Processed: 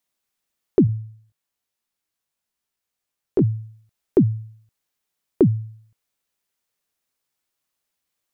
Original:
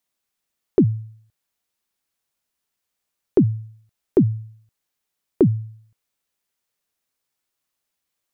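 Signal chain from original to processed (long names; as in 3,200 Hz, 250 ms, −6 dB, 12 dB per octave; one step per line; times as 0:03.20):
0:00.87–0:03.42: chorus effect 1.1 Hz, delay 17.5 ms, depth 2.2 ms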